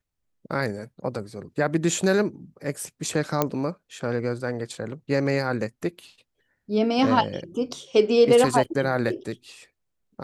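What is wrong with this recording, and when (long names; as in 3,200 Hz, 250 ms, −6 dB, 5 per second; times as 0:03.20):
0:03.42: click −7 dBFS
0:08.64–0:08.65: drop-out 5.8 ms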